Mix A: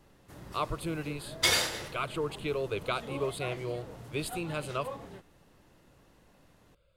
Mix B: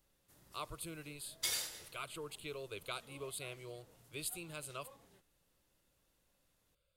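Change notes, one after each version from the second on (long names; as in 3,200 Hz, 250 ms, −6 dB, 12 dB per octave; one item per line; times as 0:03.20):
background −6.5 dB
master: add first-order pre-emphasis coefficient 0.8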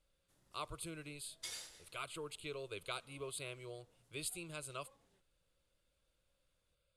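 background −9.0 dB
master: add low-pass filter 11,000 Hz 24 dB per octave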